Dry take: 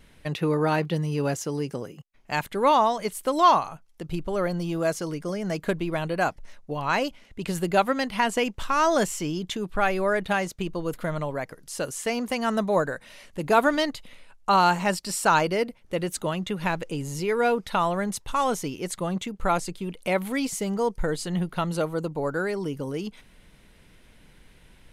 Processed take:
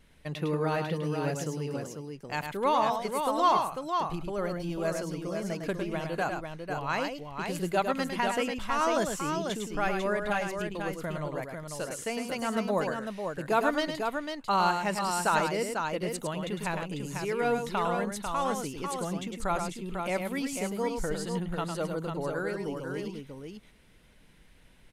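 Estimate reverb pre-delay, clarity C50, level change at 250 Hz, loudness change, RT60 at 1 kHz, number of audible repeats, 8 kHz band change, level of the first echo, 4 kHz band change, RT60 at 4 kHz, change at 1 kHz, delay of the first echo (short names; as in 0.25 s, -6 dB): none, none, -5.0 dB, -5.0 dB, none, 2, -4.5 dB, -6.0 dB, -4.5 dB, none, -4.5 dB, 0.105 s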